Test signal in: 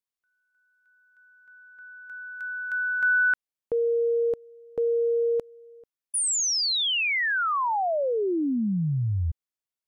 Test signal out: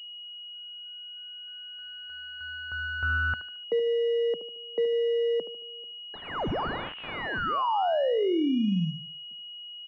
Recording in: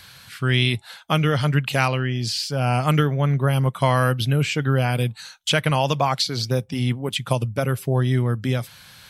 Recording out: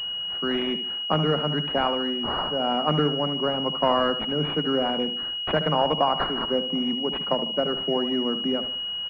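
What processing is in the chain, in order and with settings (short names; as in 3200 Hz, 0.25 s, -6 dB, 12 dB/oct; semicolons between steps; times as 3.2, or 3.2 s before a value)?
steep high-pass 160 Hz 96 dB/oct; on a send: feedback echo 74 ms, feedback 39%, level -11 dB; on the sum: pulse-width modulation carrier 2900 Hz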